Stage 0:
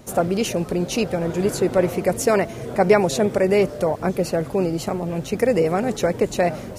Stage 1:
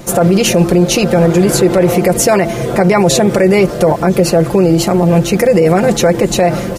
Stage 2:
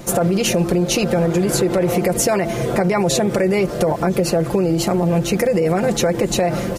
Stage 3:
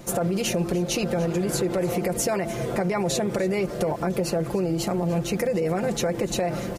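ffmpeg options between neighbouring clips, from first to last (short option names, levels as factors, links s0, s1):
-af "aecho=1:1:5.8:0.6,bandreject=f=113:t=h:w=4,bandreject=f=226:t=h:w=4,bandreject=f=339:t=h:w=4,alimiter=level_in=5.31:limit=0.891:release=50:level=0:latency=1,volume=0.891"
-af "acompressor=threshold=0.316:ratio=6,volume=0.668"
-af "aecho=1:1:295:0.119,volume=0.422"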